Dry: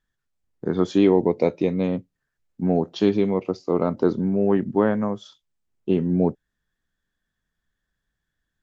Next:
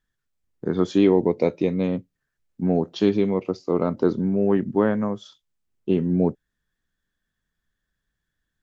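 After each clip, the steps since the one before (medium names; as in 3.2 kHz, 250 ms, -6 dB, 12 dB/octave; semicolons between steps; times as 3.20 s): peaking EQ 770 Hz -2.5 dB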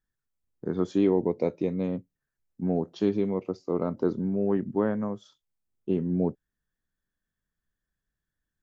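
peaking EQ 3.2 kHz -6 dB 1.8 oct; trim -5.5 dB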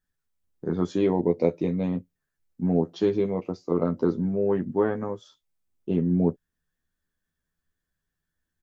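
doubling 12 ms -4 dB; trim +1.5 dB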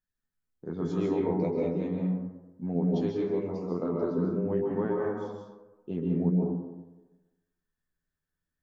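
plate-style reverb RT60 1.1 s, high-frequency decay 0.35×, pre-delay 120 ms, DRR -2 dB; trim -9 dB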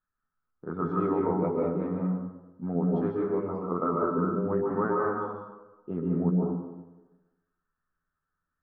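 resonant low-pass 1.3 kHz, resonance Q 7.9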